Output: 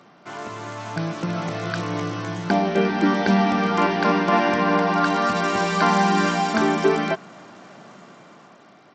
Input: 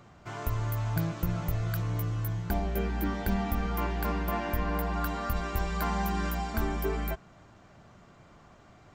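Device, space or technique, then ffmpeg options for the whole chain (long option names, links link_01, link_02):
Bluetooth headset: -af "highpass=frequency=180:width=0.5412,highpass=frequency=180:width=1.3066,dynaudnorm=framelen=530:gausssize=5:maxgain=8.5dB,aresample=16000,aresample=44100,volume=5.5dB" -ar 32000 -c:a sbc -b:a 64k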